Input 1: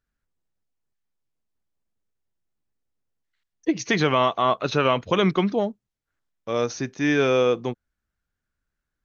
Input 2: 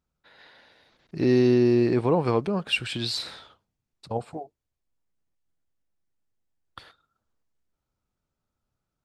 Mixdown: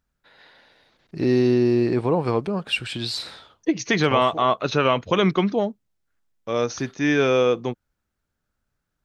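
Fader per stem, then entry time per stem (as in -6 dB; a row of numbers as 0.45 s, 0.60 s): +1.0 dB, +1.0 dB; 0.00 s, 0.00 s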